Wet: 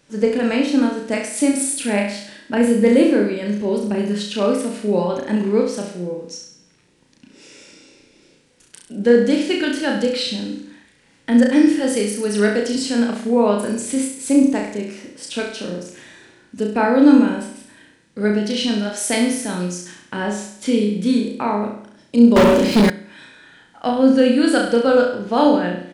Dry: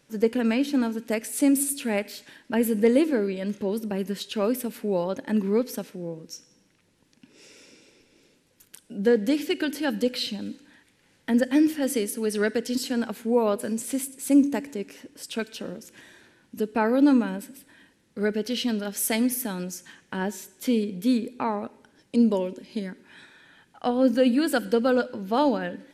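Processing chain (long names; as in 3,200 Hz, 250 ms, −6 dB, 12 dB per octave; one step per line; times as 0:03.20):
flutter between parallel walls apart 5.8 metres, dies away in 0.63 s
downsampling to 22,050 Hz
0:22.36–0:22.90: leveller curve on the samples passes 5
level +4.5 dB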